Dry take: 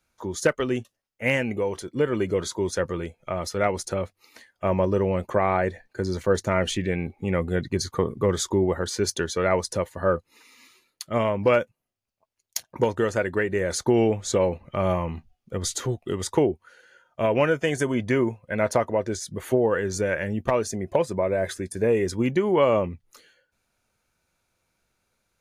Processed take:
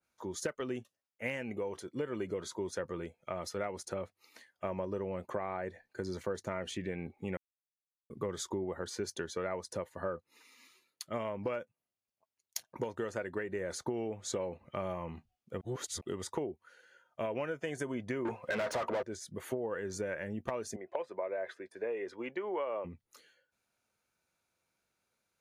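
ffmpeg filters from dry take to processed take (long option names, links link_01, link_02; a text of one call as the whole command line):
ffmpeg -i in.wav -filter_complex "[0:a]asettb=1/sr,asplit=3[link_01][link_02][link_03];[link_01]atrim=end=18.254[link_04];[link_02]atrim=start=18.25:end=19.03,asetpts=PTS-STARTPTS,afade=type=in:duration=0.004:curve=qsin,afade=type=out:start_time=0.776:duration=0.004:curve=qsin,asplit=2[link_05][link_06];[link_06]highpass=frequency=720:poles=1,volume=31dB,asoftclip=type=tanh:threshold=-9dB[link_07];[link_05][link_07]amix=inputs=2:normalize=0,lowpass=frequency=2800:poles=1,volume=-6dB[link_08];[link_03]atrim=start=19.026[link_09];[link_04][link_08]acrossfade=duration=0.004:curve1=hsin:curve2=qsin[link_10];[link_10][link_09]acrossfade=duration=0.004:curve1=qsin:curve2=hsin,asettb=1/sr,asplit=3[link_11][link_12][link_13];[link_11]atrim=end=20.764[link_14];[link_12]atrim=start=20.76:end=22.85,asetpts=PTS-STARTPTS,afade=type=in:duration=0.004:curve=qsin,afade=type=out:start_time=2.086:duration=0.004:curve=qsin,acrossover=split=360 3500:gain=0.0708 1 0.0794[link_15][link_16][link_17];[link_15][link_16][link_17]amix=inputs=3:normalize=0[link_18];[link_13]atrim=start=22.846[link_19];[link_14][link_18]acrossfade=duration=0.004:curve1=hsin:curve2=qsin[link_20];[link_20][link_19]acrossfade=duration=0.004:curve1=qsin:curve2=hsin,asplit=5[link_21][link_22][link_23][link_24][link_25];[link_21]atrim=end=7.37,asetpts=PTS-STARTPTS,afade=type=out:start_time=7.366:duration=0.004:curve=hsin[link_26];[link_22]atrim=start=7.37:end=8.1,asetpts=PTS-STARTPTS,volume=0[link_27];[link_23]atrim=start=8.1:end=15.612,asetpts=PTS-STARTPTS,afade=type=in:duration=0.004:curve=hsin[link_28];[link_24]atrim=start=15.608:end=16.012,asetpts=PTS-STARTPTS,areverse[link_29];[link_25]atrim=start=16.008[link_30];[link_26][link_27][link_28]concat=n=3:v=0:a=1[link_31];[link_31][link_29]acrossfade=duration=0.004:curve1=hsin:curve2=hsin[link_32];[link_32][link_30]acrossfade=duration=0.004:curve1=hsin:curve2=hsin,highpass=frequency=160:poles=1,acompressor=threshold=-25dB:ratio=6,adynamicequalizer=threshold=0.00631:dfrequency=2100:dqfactor=0.7:tfrequency=2100:tqfactor=0.7:attack=5:release=100:ratio=0.375:range=2.5:mode=cutabove:tftype=highshelf,volume=-7.5dB" out.wav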